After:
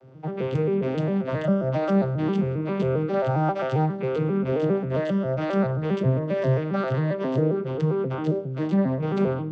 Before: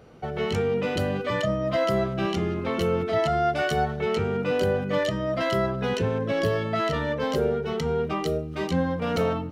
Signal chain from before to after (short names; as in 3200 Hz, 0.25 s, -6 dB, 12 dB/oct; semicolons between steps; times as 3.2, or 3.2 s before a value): arpeggiated vocoder minor triad, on C3, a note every 0.134 s; on a send: reverb RT60 0.85 s, pre-delay 3 ms, DRR 17.5 dB; on the sum: gain +2.5 dB